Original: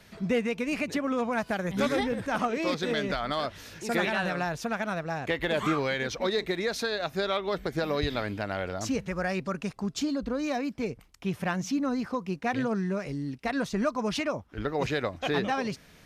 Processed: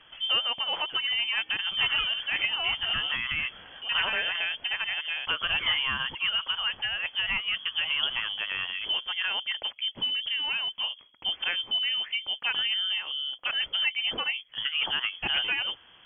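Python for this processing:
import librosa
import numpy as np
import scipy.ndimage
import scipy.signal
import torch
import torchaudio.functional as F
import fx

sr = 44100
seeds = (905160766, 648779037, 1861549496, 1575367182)

y = fx.freq_invert(x, sr, carrier_hz=3300)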